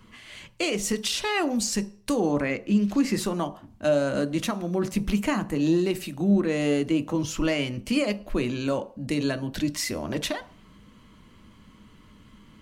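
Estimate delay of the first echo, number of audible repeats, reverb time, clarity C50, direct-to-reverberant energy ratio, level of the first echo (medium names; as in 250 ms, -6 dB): no echo, no echo, 0.45 s, 17.5 dB, 9.5 dB, no echo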